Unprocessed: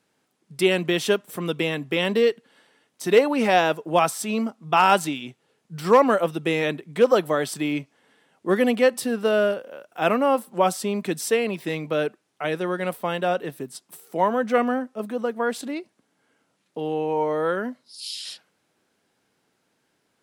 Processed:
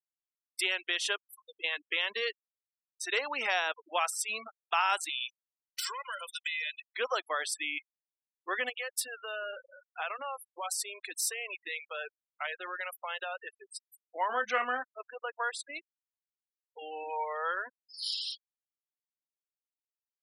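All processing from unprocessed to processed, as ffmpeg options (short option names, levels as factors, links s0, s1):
-filter_complex "[0:a]asettb=1/sr,asplit=3[s0][s1][s2];[s0]atrim=end=1.244[s3];[s1]atrim=start=1.24:end=1.64,asetpts=PTS-STARTPTS,afade=t=in:d=0.004:c=qsin,afade=t=out:st=0.396:d=0.004:c=qsin,acompressor=threshold=0.0355:ratio=2.5:attack=3.2:release=140:knee=1:detection=peak,equalizer=f=1900:w=0.59:g=-13[s4];[s2]atrim=start=1.636[s5];[s3][s4]acrossfade=d=0.004:c1=hsin:c2=qsin[s6];[s6][s5]acrossfade=d=0.004:c1=qsin:c2=hsin,asettb=1/sr,asplit=3[s7][s8][s9];[s7]atrim=end=5.094[s10];[s8]atrim=start=5.09:end=6.95,asetpts=PTS-STARTPTS,afade=t=in:d=0.004:c=qsin,afade=t=out:st=1.856:d=0.004:c=qsin,tiltshelf=f=1400:g=-10,aecho=1:1:2:0.8,atrim=end_sample=82026,acompressor=threshold=0.0398:ratio=16:attack=3.2:release=140:knee=1:detection=peak[s11];[s9]atrim=start=6.946[s12];[s10][s11]acrossfade=d=0.004:c1=hsin:c2=qsin[s13];[s13][s12]acrossfade=d=0.004:c1=qsin:c2=hsin,asettb=1/sr,asplit=3[s14][s15][s16];[s14]atrim=end=8.694[s17];[s15]atrim=start=8.69:end=13.46,asetpts=PTS-STARTPTS,afade=t=in:d=0.004:c=qsin,afade=t=out:st=4.766:d=0.004:c=qsin,acompressor=threshold=0.0708:ratio=12:attack=3.2:release=140:knee=1:detection=peak,highshelf=f=9300:g=3,bandreject=f=60:t=h:w=6,bandreject=f=120:t=h:w=6,bandreject=f=180:t=h:w=6,bandreject=f=240:t=h:w=6[s18];[s16]atrim=start=13.456[s19];[s17][s18]acrossfade=d=0.004:c1=hsin:c2=qsin[s20];[s20][s19]acrossfade=d=0.004:c1=qsin:c2=hsin,asettb=1/sr,asplit=3[s21][s22][s23];[s21]atrim=end=14.294[s24];[s22]atrim=start=14.29:end=14.83,asetpts=PTS-STARTPTS,afade=t=in:d=0.004:c=qsin,afade=t=out:st=0.536:d=0.004:c=qsin,acontrast=24,asplit=2[s25][s26];[s26]adelay=24,volume=0.376[s27];[s25][s27]amix=inputs=2:normalize=0,atrim=end_sample=23814[s28];[s23]atrim=start=14.826[s29];[s24][s28]acrossfade=d=0.004:c1=hsin:c2=qsin[s30];[s30][s29]acrossfade=d=0.004:c1=qsin:c2=hsin,highpass=1200,afftfilt=real='re*gte(hypot(re,im),0.02)':imag='im*gte(hypot(re,im),0.02)':win_size=1024:overlap=0.75,acompressor=threshold=0.0355:ratio=2"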